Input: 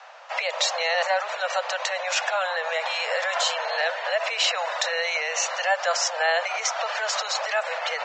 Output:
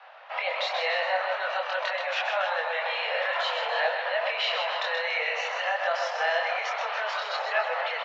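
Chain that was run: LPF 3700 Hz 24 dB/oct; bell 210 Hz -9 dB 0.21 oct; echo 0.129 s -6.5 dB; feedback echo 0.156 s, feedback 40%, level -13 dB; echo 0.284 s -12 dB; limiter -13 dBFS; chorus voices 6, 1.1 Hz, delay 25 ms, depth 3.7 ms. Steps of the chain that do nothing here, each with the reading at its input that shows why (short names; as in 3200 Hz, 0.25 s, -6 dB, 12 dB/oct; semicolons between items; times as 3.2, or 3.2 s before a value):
bell 210 Hz: input band starts at 430 Hz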